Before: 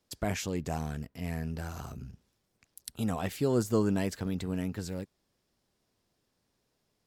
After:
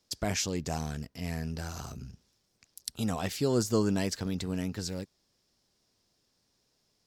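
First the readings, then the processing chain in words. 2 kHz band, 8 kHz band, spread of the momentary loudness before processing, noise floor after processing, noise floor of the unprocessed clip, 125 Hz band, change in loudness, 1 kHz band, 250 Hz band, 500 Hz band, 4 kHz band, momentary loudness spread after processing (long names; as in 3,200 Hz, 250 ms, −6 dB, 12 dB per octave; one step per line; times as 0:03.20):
+1.0 dB, +6.5 dB, 17 LU, −75 dBFS, −78 dBFS, 0.0 dB, +0.5 dB, 0.0 dB, 0.0 dB, 0.0 dB, +7.0 dB, 14 LU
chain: parametric band 5,300 Hz +9.5 dB 1.1 octaves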